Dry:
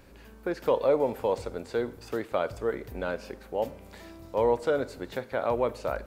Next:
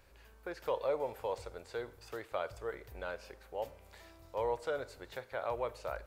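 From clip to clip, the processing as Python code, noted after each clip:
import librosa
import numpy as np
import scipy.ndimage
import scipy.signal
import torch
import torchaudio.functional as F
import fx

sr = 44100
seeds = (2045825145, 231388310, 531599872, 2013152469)

y = fx.peak_eq(x, sr, hz=230.0, db=-14.5, octaves=1.3)
y = y * librosa.db_to_amplitude(-6.5)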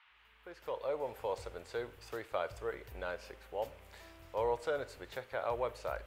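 y = fx.fade_in_head(x, sr, length_s=1.44)
y = fx.dmg_noise_band(y, sr, seeds[0], low_hz=890.0, high_hz=3100.0, level_db=-67.0)
y = y * librosa.db_to_amplitude(1.0)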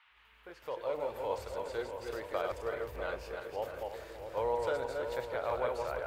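y = fx.reverse_delay_fb(x, sr, ms=162, feedback_pct=45, wet_db=-3)
y = fx.echo_filtered(y, sr, ms=646, feedback_pct=61, hz=1600.0, wet_db=-9)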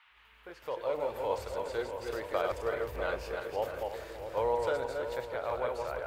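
y = fx.rider(x, sr, range_db=10, speed_s=2.0)
y = y * librosa.db_to_amplitude(2.0)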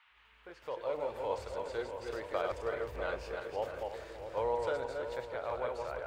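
y = fx.peak_eq(x, sr, hz=13000.0, db=-14.0, octaves=0.44)
y = y * librosa.db_to_amplitude(-3.0)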